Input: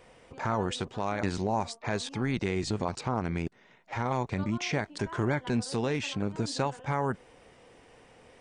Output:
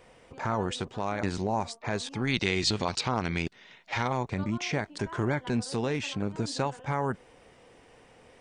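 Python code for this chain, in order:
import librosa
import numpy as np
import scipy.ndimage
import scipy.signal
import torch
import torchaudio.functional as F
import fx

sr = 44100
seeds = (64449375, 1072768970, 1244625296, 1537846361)

y = fx.peak_eq(x, sr, hz=3800.0, db=13.0, octaves=2.0, at=(2.27, 4.08))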